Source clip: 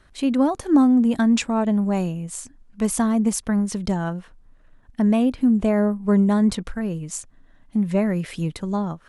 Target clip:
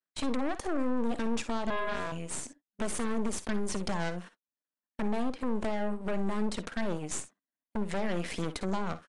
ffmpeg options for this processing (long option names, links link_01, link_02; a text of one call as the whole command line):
ffmpeg -i in.wav -filter_complex "[0:a]aeval=exprs='if(lt(val(0),0),0.447*val(0),val(0))':channel_layout=same,highpass=frequency=210:width=0.5412,highpass=frequency=210:width=1.3066,agate=range=-37dB:threshold=-48dB:ratio=16:detection=peak,alimiter=limit=-20.5dB:level=0:latency=1:release=156,acompressor=threshold=-30dB:ratio=6,asettb=1/sr,asplit=3[link_01][link_02][link_03];[link_01]atrim=end=1.704[link_04];[link_02]atrim=start=1.7:end=2.12,asetpts=PTS-STARTPTS,afade=type=in:duration=0.004:curve=qsin,afade=type=out:start_time=0.416:duration=0.004:curve=qsin,aeval=exprs='val(0)*sin(2*PI*830*n/s)':channel_layout=same[link_05];[link_03]atrim=start=2.116[link_06];[link_04][link_05]acrossfade=duration=0.004:curve1=hsin:curve2=qsin[link_07];[link_07][link_06]acrossfade=duration=0.004:curve1=qsin:curve2=hsin,aeval=exprs='0.0944*(cos(1*acos(clip(val(0)/0.0944,-1,1)))-cos(1*PI/2))+0.0266*(cos(3*acos(clip(val(0)/0.0944,-1,1)))-cos(3*PI/2))+0.0211*(cos(5*acos(clip(val(0)/0.0944,-1,1)))-cos(5*PI/2))+0.0188*(cos(8*acos(clip(val(0)/0.0944,-1,1)))-cos(8*PI/2))':channel_layout=same,asplit=2[link_08][link_09];[link_09]aecho=0:1:52|62:0.168|0.15[link_10];[link_08][link_10]amix=inputs=2:normalize=0,aresample=22050,aresample=44100" out.wav